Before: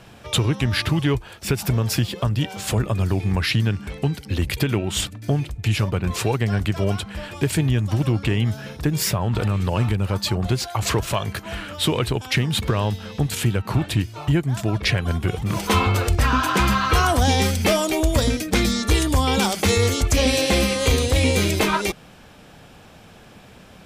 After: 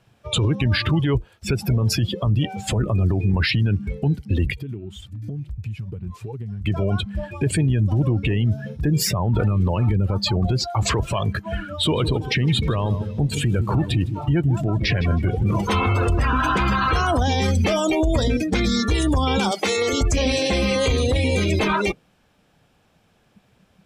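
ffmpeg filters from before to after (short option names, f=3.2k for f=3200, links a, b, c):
-filter_complex "[0:a]asplit=3[a][b][c];[a]afade=t=out:st=4.52:d=0.02[d];[b]acompressor=threshold=-32dB:ratio=6:attack=3.2:release=140:knee=1:detection=peak,afade=t=in:st=4.52:d=0.02,afade=t=out:st=6.64:d=0.02[e];[c]afade=t=in:st=6.64:d=0.02[f];[d][e][f]amix=inputs=3:normalize=0,asettb=1/sr,asplit=3[g][h][i];[g]atrim=end=11.674[j];[h]atrim=start=11.67:end=17.06,asetpts=PTS-STARTPTS,afade=t=in:d=0.004:c=qsin,afade=t=out:st=5.386:d=0.004:c=qsin,aecho=1:1:158|316|474|632|790:0.237|0.119|0.0593|0.0296|0.0148,atrim=end_sample=237699[k];[i]atrim=start=17.056[l];[j][k]acrossfade=d=0.004:c1=hsin:c2=qsin[m];[m][l]acrossfade=d=0.004:c1=qsin:c2=hsin,asettb=1/sr,asplit=3[n][o][p];[n]atrim=end=19.514[q];[o]atrim=start=19.51:end=19.93,asetpts=PTS-STARTPTS,afade=t=in:d=0.004:c=qsin,afade=t=out:st=0.416:d=0.004:c=qsin,highpass=320[r];[p]atrim=start=19.926[s];[q][r]acrossfade=d=0.004:c1=hsin:c2=qsin[t];[t][s]acrossfade=d=0.004:c1=qsin:c2=hsin,afftdn=nr=21:nf=-27,alimiter=limit=-18.5dB:level=0:latency=1:release=19,volume=6dB"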